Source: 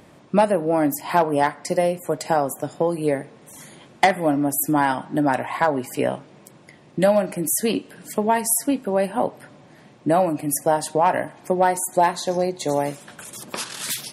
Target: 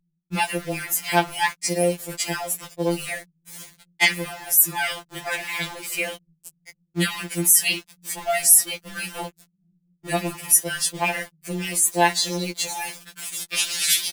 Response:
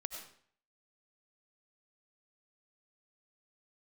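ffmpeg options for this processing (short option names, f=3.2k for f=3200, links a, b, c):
-filter_complex "[0:a]highshelf=f=1.6k:t=q:w=1.5:g=13,acrossover=split=110[a][b];[a]aecho=1:1:669|1338|2007|2676|3345|4014|4683:0.355|0.206|0.119|0.0692|0.0402|0.0233|0.0135[c];[b]aeval=exprs='val(0)*gte(abs(val(0)),0.0501)':c=same[d];[c][d]amix=inputs=2:normalize=0,afftfilt=real='re*2.83*eq(mod(b,8),0)':imag='im*2.83*eq(mod(b,8),0)':win_size=2048:overlap=0.75,volume=-3.5dB"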